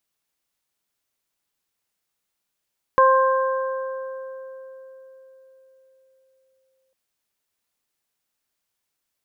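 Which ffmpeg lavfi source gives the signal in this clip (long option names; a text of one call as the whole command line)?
ffmpeg -f lavfi -i "aevalsrc='0.178*pow(10,-3*t/4.45)*sin(2*PI*527*t)+0.251*pow(10,-3*t/2.4)*sin(2*PI*1054*t)+0.0631*pow(10,-3*t/3.06)*sin(2*PI*1581*t)':duration=3.95:sample_rate=44100" out.wav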